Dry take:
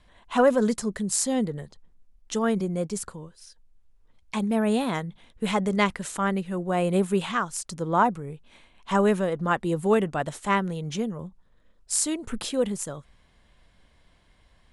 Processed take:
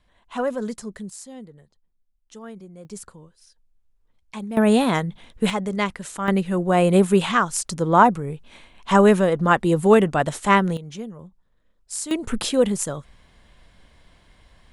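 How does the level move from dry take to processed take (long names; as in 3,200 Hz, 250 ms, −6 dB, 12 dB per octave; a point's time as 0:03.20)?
−5.5 dB
from 0:01.10 −14.5 dB
from 0:02.85 −5.5 dB
from 0:04.57 +7 dB
from 0:05.50 −1 dB
from 0:06.28 +7 dB
from 0:10.77 −5 dB
from 0:12.11 +6.5 dB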